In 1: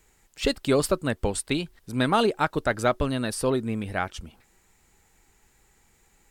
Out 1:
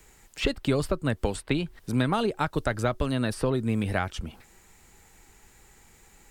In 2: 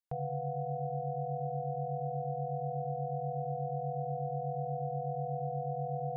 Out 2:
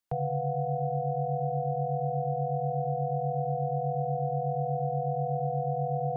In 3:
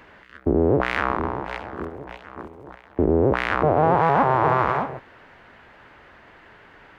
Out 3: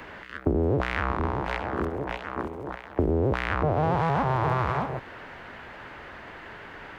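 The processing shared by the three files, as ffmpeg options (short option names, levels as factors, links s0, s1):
-filter_complex "[0:a]acrossover=split=140|3100[s0][s1][s2];[s0]acompressor=threshold=0.02:ratio=4[s3];[s1]acompressor=threshold=0.0251:ratio=4[s4];[s2]acompressor=threshold=0.00316:ratio=4[s5];[s3][s4][s5]amix=inputs=3:normalize=0,volume=2.11"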